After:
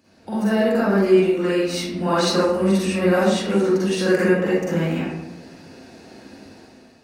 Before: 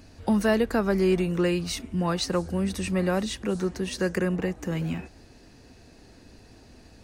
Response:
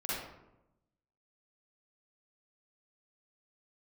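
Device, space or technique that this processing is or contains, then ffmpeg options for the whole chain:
far laptop microphone: -filter_complex "[1:a]atrim=start_sample=2205[s0];[0:a][s0]afir=irnorm=-1:irlink=0,highpass=160,dynaudnorm=f=170:g=7:m=3.16,volume=0.631"

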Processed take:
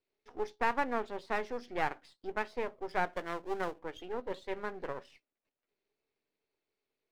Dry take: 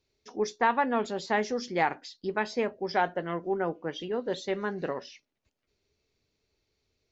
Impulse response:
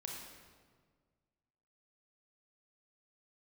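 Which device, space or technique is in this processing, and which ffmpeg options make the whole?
crystal radio: -filter_complex "[0:a]highpass=280,lowpass=2700,aeval=exprs='if(lt(val(0),0),0.251*val(0),val(0))':c=same,asettb=1/sr,asplit=3[s0][s1][s2];[s0]atrim=end=3.134[s3];[s1]atrim=start=3.13:end=3.79,asetpts=PTS-STARTPTS,afade=t=in:d=0.004:c=qsin,afade=t=out:st=0.656:d=0.004:c=qsin,highshelf=f=2700:g=11.5[s4];[s2]atrim=start=3.786[s5];[s3][s4]acrossfade=d=0.004:c1=hsin:c2=qsin[s6];[s6][s5]acrossfade=d=0.004:c1=qsin:c2=hsin,volume=0.708"

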